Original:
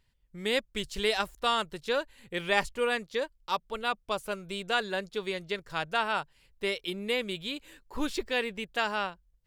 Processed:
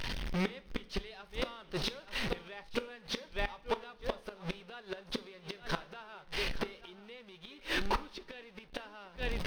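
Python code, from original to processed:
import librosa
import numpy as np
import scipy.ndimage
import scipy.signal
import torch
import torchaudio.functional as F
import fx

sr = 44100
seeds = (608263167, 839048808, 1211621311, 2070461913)

p1 = x + 0.5 * 10.0 ** (-30.0 / 20.0) * np.sign(x)
p2 = fx.recorder_agc(p1, sr, target_db=-17.5, rise_db_per_s=5.9, max_gain_db=30)
p3 = fx.backlash(p2, sr, play_db=-27.5)
p4 = p2 + (p3 * librosa.db_to_amplitude(-12.0))
p5 = scipy.signal.savgol_filter(p4, 15, 4, mode='constant')
p6 = p5 + fx.echo_single(p5, sr, ms=872, db=-13.5, dry=0)
p7 = fx.gate_flip(p6, sr, shuts_db=-21.0, range_db=-26)
p8 = fx.peak_eq(p7, sr, hz=88.0, db=-7.0, octaves=2.4)
p9 = fx.rev_double_slope(p8, sr, seeds[0], early_s=0.39, late_s=1.6, knee_db=-18, drr_db=12.0)
y = p9 * librosa.db_to_amplitude(1.0)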